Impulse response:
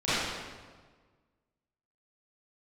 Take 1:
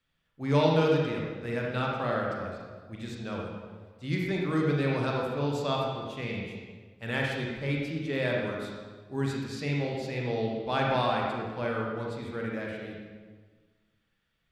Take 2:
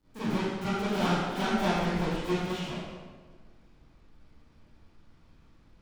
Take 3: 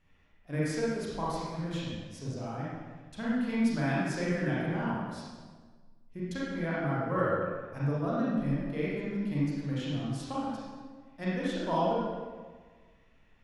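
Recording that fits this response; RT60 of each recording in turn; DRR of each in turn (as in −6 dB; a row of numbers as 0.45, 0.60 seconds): 2; 1.5, 1.5, 1.5 seconds; −2.0, −16.0, −8.0 decibels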